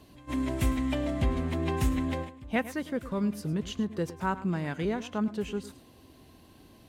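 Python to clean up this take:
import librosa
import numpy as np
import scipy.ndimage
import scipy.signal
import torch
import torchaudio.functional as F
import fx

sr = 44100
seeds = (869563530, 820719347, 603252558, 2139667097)

y = fx.fix_echo_inverse(x, sr, delay_ms=106, level_db=-15.5)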